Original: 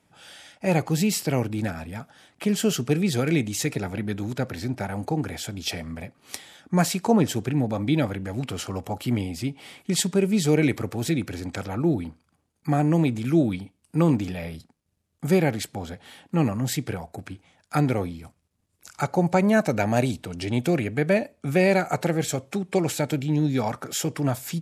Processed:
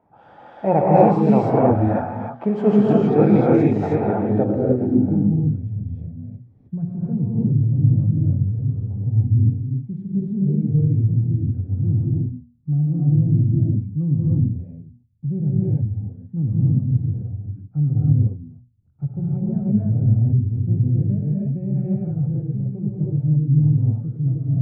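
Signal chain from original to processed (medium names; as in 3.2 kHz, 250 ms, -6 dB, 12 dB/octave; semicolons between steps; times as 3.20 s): hum notches 60/120/180/240 Hz; gated-style reverb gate 340 ms rising, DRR -6 dB; low-pass sweep 860 Hz -> 120 Hz, 4.22–5.70 s; trim +1.5 dB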